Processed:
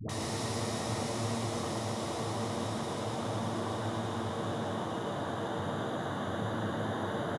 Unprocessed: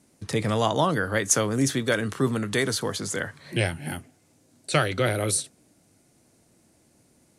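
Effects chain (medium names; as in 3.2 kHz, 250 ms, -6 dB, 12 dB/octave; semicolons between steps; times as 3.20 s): peaking EQ 110 Hz +6.5 dB 1.5 oct; compressor with a negative ratio -34 dBFS, ratio -1; Paulstretch 29×, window 1.00 s, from 0.57 s; phase dispersion highs, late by 93 ms, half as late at 490 Hz; on a send: frequency-shifting echo 116 ms, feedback 53%, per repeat +120 Hz, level -3.5 dB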